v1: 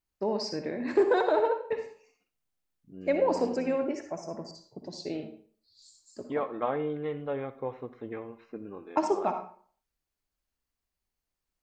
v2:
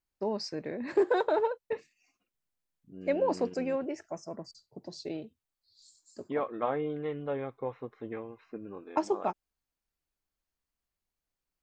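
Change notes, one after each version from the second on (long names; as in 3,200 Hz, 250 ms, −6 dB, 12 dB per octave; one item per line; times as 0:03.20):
reverb: off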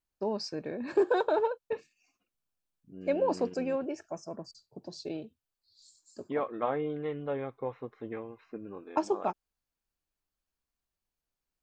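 first voice: add Butterworth band-reject 2,000 Hz, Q 6.3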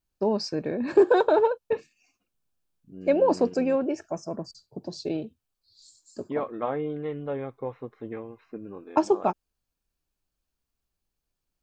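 first voice +5.0 dB
master: add low-shelf EQ 480 Hz +4.5 dB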